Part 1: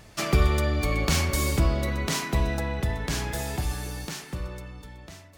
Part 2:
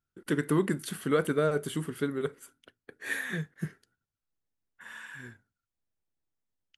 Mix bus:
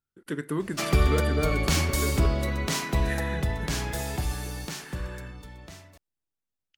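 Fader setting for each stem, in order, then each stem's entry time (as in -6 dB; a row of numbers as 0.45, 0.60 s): -0.5, -3.5 dB; 0.60, 0.00 s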